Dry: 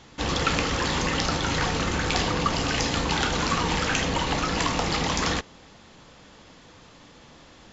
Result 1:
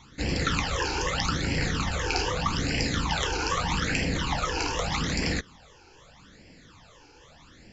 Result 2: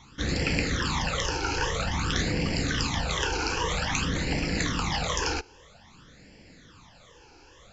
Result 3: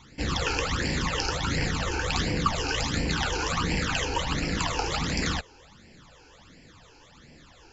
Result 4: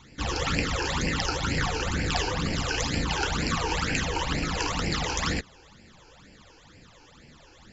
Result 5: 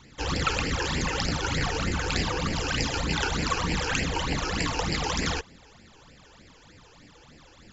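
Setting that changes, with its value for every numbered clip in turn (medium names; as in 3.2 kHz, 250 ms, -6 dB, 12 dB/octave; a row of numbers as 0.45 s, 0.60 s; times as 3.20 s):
phase shifter, rate: 0.81 Hz, 0.51 Hz, 1.4 Hz, 2.1 Hz, 3.3 Hz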